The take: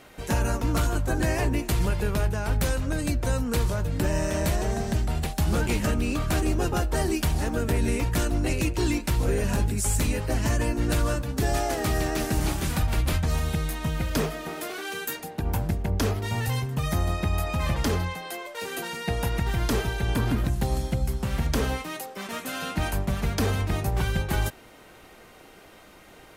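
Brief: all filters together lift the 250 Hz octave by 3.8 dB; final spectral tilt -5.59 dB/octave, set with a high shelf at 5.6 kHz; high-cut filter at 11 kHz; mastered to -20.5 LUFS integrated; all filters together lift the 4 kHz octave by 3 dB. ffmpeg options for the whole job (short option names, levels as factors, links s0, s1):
-af "lowpass=11000,equalizer=f=250:t=o:g=5,equalizer=f=4000:t=o:g=5,highshelf=f=5600:g=-3,volume=1.78"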